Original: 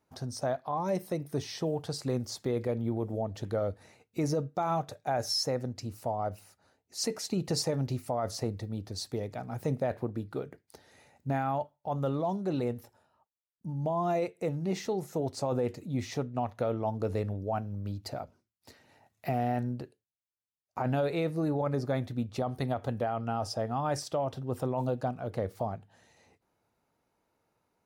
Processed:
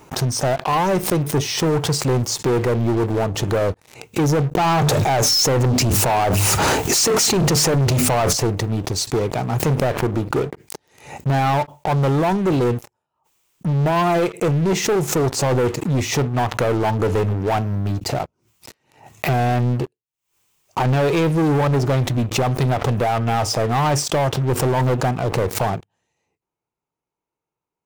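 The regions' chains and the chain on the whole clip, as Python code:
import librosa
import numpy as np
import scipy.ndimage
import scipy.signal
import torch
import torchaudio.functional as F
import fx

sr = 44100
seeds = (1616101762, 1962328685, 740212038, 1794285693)

y = fx.chain(x, sr, fx.hum_notches(base_hz=50, count=5),
    fx.env_flatten(amount_pct=100), at=(4.55, 8.33))
y = fx.ripple_eq(y, sr, per_octave=0.71, db=6)
y = fx.leveller(y, sr, passes=5)
y = fx.pre_swell(y, sr, db_per_s=110.0)
y = y * librosa.db_to_amplitude(-1.0)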